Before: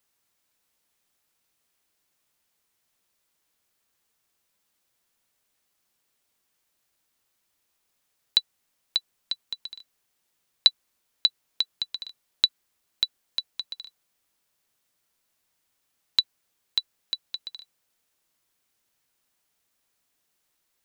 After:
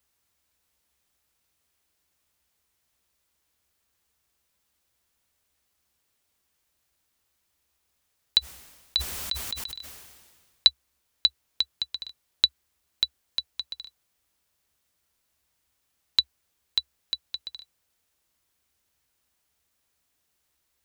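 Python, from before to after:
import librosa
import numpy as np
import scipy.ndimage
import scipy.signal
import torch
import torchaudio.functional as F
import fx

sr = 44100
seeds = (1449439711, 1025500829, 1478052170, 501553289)

y = fx.peak_eq(x, sr, hz=66.0, db=15.0, octaves=0.76)
y = fx.sustainer(y, sr, db_per_s=37.0, at=(8.39, 10.68))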